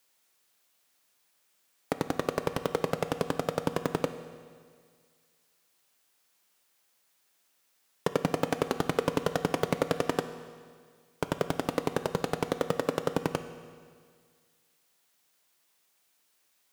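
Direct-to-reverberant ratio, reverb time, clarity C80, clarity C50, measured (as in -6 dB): 9.5 dB, 1.9 s, 12.0 dB, 11.0 dB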